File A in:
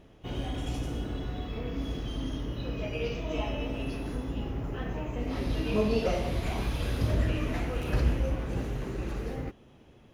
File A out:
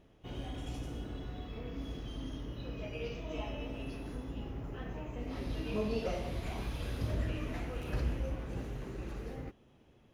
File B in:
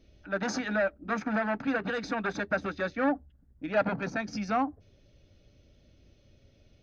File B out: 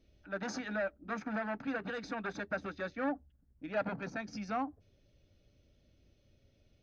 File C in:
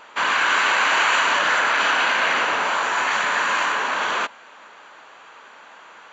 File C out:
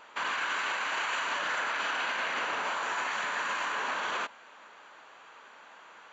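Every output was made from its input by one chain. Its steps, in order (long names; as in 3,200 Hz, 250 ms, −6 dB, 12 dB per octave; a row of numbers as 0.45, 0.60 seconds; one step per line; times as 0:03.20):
brickwall limiter −15.5 dBFS
level −7.5 dB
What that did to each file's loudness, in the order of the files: −7.5, −7.5, −12.0 LU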